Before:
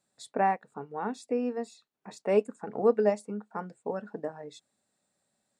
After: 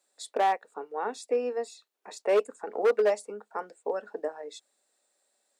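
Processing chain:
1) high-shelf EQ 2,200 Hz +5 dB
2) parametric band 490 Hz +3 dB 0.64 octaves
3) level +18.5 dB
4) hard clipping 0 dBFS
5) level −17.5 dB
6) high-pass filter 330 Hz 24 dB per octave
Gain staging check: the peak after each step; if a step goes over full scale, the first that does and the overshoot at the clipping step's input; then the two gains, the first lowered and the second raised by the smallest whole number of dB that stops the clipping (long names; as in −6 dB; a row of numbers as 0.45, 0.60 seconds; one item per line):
−11.5, −9.5, +9.0, 0.0, −17.5, −13.5 dBFS
step 3, 9.0 dB
step 3 +9.5 dB, step 5 −8.5 dB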